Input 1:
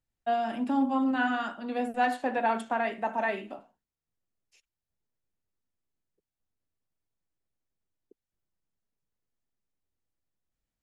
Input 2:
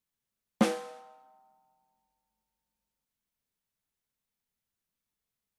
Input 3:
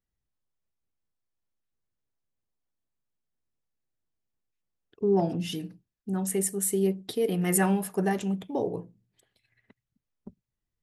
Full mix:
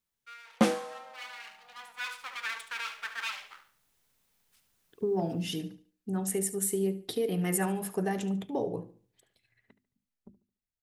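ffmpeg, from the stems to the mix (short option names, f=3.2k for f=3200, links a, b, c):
-filter_complex "[0:a]aeval=exprs='abs(val(0))':c=same,highpass=1.5k,volume=-11.5dB,asplit=2[a][b];[b]volume=-11.5dB[c];[1:a]volume=1.5dB[d];[2:a]acompressor=threshold=-27dB:ratio=3,volume=-13dB,asplit=2[e][f];[f]volume=-15.5dB[g];[c][g]amix=inputs=2:normalize=0,aecho=0:1:72|144|216|288|360:1|0.34|0.116|0.0393|0.0134[h];[a][d][e][h]amix=inputs=4:normalize=0,dynaudnorm=f=280:g=11:m=13dB,bandreject=f=50:t=h:w=6,bandreject=f=100:t=h:w=6,bandreject=f=150:t=h:w=6,bandreject=f=200:t=h:w=6,bandreject=f=250:t=h:w=6,bandreject=f=300:t=h:w=6,bandreject=f=350:t=h:w=6"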